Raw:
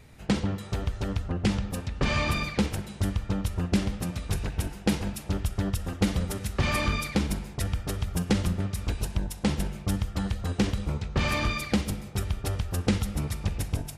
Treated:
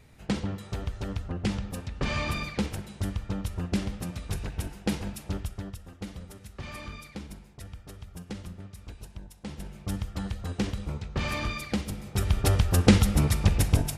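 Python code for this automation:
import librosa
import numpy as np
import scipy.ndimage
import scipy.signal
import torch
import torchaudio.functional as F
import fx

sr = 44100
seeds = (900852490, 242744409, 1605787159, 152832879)

y = fx.gain(x, sr, db=fx.line((5.35, -3.5), (5.84, -14.0), (9.44, -14.0), (9.93, -4.0), (11.91, -4.0), (12.4, 7.0)))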